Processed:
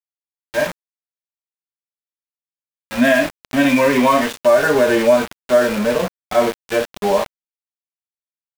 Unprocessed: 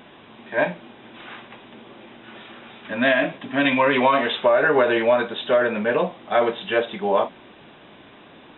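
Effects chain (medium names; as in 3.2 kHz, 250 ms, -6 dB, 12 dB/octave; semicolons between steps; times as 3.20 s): dynamic bell 240 Hz, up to +4 dB, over -38 dBFS, Q 5.4; harmonic-percussive split percussive -14 dB; small samples zeroed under -27 dBFS; trim +6 dB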